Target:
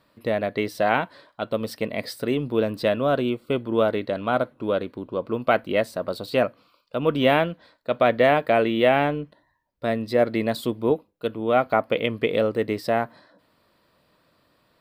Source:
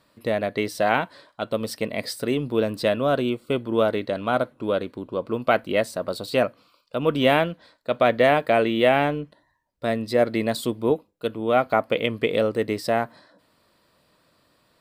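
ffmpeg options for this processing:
-af "equalizer=f=7900:t=o:w=1.3:g=-7"

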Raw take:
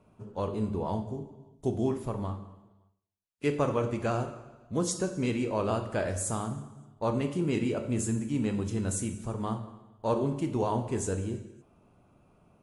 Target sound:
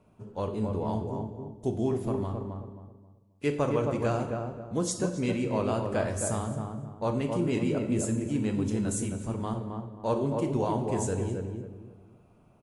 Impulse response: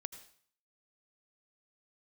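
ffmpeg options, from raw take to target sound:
-filter_complex "[0:a]equalizer=f=1200:w=4.8:g=-2.5,asplit=2[s0][s1];[s1]adelay=267,lowpass=f=1100:p=1,volume=0.668,asplit=2[s2][s3];[s3]adelay=267,lowpass=f=1100:p=1,volume=0.34,asplit=2[s4][s5];[s5]adelay=267,lowpass=f=1100:p=1,volume=0.34,asplit=2[s6][s7];[s7]adelay=267,lowpass=f=1100:p=1,volume=0.34[s8];[s0][s2][s4][s6][s8]amix=inputs=5:normalize=0"

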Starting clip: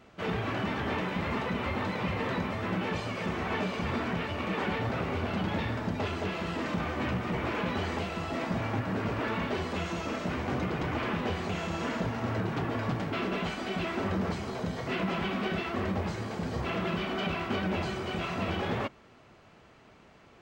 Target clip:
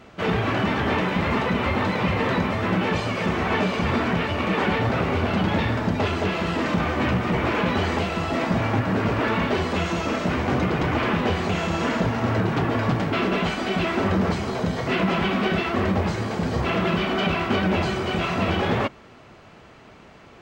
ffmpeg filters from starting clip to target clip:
-af "highshelf=f=9600:g=-3.5,volume=2.82"

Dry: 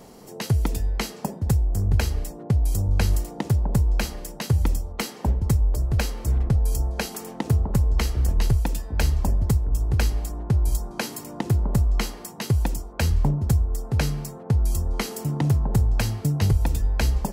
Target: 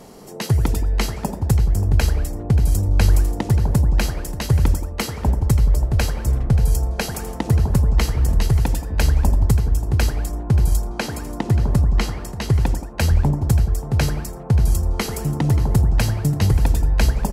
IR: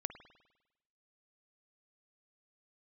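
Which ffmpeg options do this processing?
-filter_complex "[0:a]asettb=1/sr,asplit=3[s0][s1][s2];[s0]atrim=end=10.874[s3];[s1]atrim=start=10.87:end=12.83,asetpts=PTS-STARTPTS,afade=t=in:d=0.004:c=qsin,afade=t=out:st=1.956:d=0.004:c=qsin,highshelf=f=8700:g=-9[s4];[s2]atrim=start=12.826[s5];[s3][s4]acrossfade=d=0.004:c1=hsin:c2=qsin[s6];[s6][s5]acrossfade=d=0.004:c1=qsin:c2=hsin,aecho=1:1:582:0.178[s7];[1:a]atrim=start_sample=2205,atrim=end_sample=6174,asetrate=26019,aresample=44100[s8];[s7][s8]afir=irnorm=-1:irlink=0,volume=1.41"

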